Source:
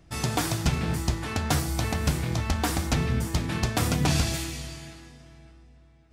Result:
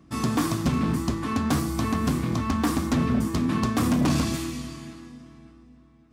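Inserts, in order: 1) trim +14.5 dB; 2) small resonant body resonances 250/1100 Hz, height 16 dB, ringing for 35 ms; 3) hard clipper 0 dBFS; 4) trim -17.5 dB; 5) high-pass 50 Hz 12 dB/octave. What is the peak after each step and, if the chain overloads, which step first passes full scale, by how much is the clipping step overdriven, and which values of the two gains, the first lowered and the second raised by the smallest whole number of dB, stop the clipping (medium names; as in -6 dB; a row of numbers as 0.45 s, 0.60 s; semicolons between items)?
+1.5 dBFS, +10.0 dBFS, 0.0 dBFS, -17.5 dBFS, -13.0 dBFS; step 1, 10.0 dB; step 1 +4.5 dB, step 4 -7.5 dB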